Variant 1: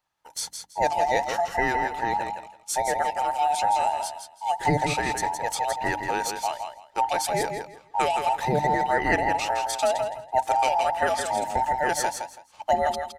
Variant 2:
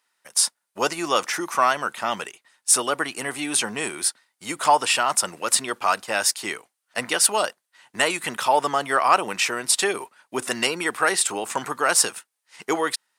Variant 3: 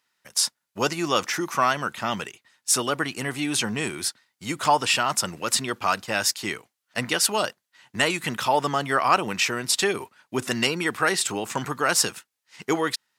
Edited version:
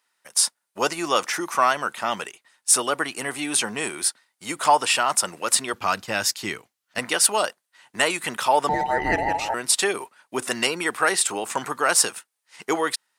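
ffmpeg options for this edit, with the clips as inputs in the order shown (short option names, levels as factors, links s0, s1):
-filter_complex "[1:a]asplit=3[s0][s1][s2];[s0]atrim=end=5.742[s3];[2:a]atrim=start=5.738:end=6.992[s4];[s1]atrim=start=6.988:end=8.692[s5];[0:a]atrim=start=8.688:end=9.542[s6];[s2]atrim=start=9.538[s7];[s3][s4]acrossfade=d=0.004:c1=hsin:c2=hsin[s8];[s8][s5]acrossfade=d=0.004:c1=hsin:c2=hsin[s9];[s9][s6]acrossfade=d=0.004:c1=hsin:c2=hsin[s10];[s10][s7]acrossfade=d=0.004:c1=hsin:c2=hsin"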